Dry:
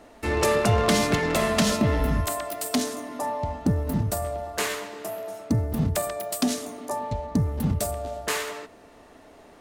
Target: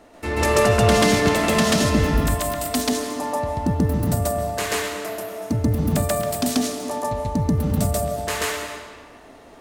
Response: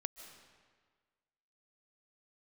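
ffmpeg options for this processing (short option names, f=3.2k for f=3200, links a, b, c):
-filter_complex "[0:a]asplit=2[a][b];[1:a]atrim=start_sample=2205,adelay=136[c];[b][c]afir=irnorm=-1:irlink=0,volume=4.5dB[d];[a][d]amix=inputs=2:normalize=0"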